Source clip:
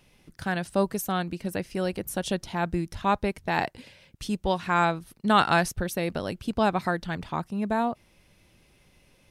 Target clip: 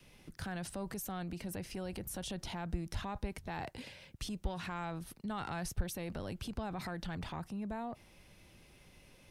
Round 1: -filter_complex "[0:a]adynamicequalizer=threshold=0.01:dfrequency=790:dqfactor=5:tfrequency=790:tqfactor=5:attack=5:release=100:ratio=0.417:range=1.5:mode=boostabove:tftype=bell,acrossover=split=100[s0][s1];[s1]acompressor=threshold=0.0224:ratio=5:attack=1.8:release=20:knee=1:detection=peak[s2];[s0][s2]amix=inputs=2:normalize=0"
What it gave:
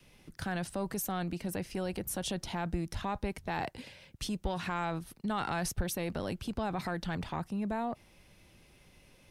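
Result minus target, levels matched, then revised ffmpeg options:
compression: peak gain reduction -7 dB
-filter_complex "[0:a]adynamicequalizer=threshold=0.01:dfrequency=790:dqfactor=5:tfrequency=790:tqfactor=5:attack=5:release=100:ratio=0.417:range=1.5:mode=boostabove:tftype=bell,acrossover=split=100[s0][s1];[s1]acompressor=threshold=0.00841:ratio=5:attack=1.8:release=20:knee=1:detection=peak[s2];[s0][s2]amix=inputs=2:normalize=0"

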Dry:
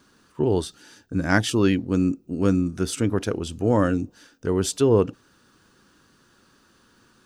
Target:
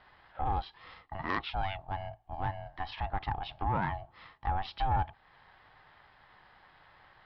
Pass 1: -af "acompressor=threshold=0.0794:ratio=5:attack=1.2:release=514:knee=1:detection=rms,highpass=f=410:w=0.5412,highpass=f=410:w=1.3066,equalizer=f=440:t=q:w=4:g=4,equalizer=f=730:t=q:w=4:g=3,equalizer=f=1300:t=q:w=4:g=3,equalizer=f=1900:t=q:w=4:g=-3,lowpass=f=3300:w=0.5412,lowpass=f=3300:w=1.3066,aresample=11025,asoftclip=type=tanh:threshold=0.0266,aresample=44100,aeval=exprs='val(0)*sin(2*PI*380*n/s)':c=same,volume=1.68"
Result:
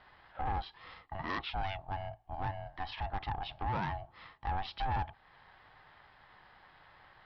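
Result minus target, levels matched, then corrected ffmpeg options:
saturation: distortion +8 dB
-af "acompressor=threshold=0.0794:ratio=5:attack=1.2:release=514:knee=1:detection=rms,highpass=f=410:w=0.5412,highpass=f=410:w=1.3066,equalizer=f=440:t=q:w=4:g=4,equalizer=f=730:t=q:w=4:g=3,equalizer=f=1300:t=q:w=4:g=3,equalizer=f=1900:t=q:w=4:g=-3,lowpass=f=3300:w=0.5412,lowpass=f=3300:w=1.3066,aresample=11025,asoftclip=type=tanh:threshold=0.0668,aresample=44100,aeval=exprs='val(0)*sin(2*PI*380*n/s)':c=same,volume=1.68"

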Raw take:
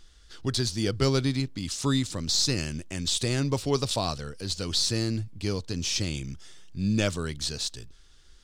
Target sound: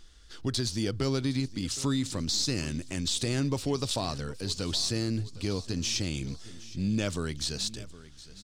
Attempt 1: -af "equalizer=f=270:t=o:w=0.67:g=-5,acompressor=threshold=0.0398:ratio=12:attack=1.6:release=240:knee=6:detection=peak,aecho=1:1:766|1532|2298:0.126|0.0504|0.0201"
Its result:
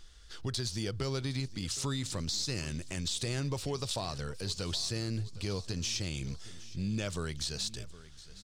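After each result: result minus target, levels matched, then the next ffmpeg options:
compression: peak gain reduction +4.5 dB; 250 Hz band -3.0 dB
-af "equalizer=f=270:t=o:w=0.67:g=-5,acompressor=threshold=0.0841:ratio=12:attack=1.6:release=240:knee=6:detection=peak,aecho=1:1:766|1532|2298:0.126|0.0504|0.0201"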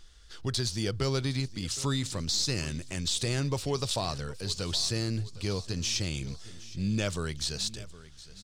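250 Hz band -3.5 dB
-af "equalizer=f=270:t=o:w=0.67:g=3,acompressor=threshold=0.0841:ratio=12:attack=1.6:release=240:knee=6:detection=peak,aecho=1:1:766|1532|2298:0.126|0.0504|0.0201"

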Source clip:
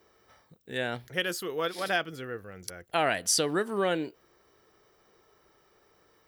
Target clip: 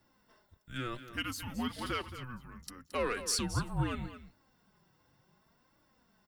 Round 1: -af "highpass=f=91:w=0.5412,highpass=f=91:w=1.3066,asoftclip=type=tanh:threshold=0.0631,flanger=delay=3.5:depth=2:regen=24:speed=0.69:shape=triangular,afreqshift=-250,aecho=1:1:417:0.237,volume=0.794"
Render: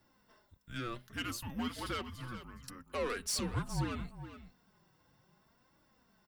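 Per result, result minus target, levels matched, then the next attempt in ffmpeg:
echo 195 ms late; saturation: distortion +10 dB
-af "highpass=f=91:w=0.5412,highpass=f=91:w=1.3066,asoftclip=type=tanh:threshold=0.0631,flanger=delay=3.5:depth=2:regen=24:speed=0.69:shape=triangular,afreqshift=-250,aecho=1:1:222:0.237,volume=0.794"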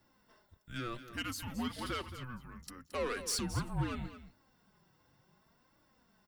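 saturation: distortion +10 dB
-af "highpass=f=91:w=0.5412,highpass=f=91:w=1.3066,asoftclip=type=tanh:threshold=0.178,flanger=delay=3.5:depth=2:regen=24:speed=0.69:shape=triangular,afreqshift=-250,aecho=1:1:222:0.237,volume=0.794"

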